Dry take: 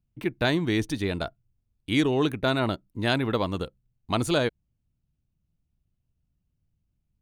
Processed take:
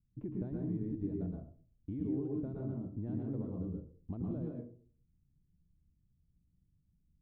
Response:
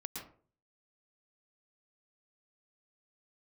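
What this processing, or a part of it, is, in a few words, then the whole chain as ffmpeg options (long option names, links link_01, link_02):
television next door: -filter_complex "[0:a]acompressor=threshold=-35dB:ratio=5,lowpass=310[link_01];[1:a]atrim=start_sample=2205[link_02];[link_01][link_02]afir=irnorm=-1:irlink=0,volume=3dB"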